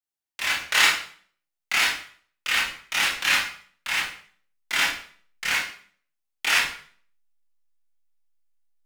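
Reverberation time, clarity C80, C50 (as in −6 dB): 0.50 s, 8.0 dB, 2.5 dB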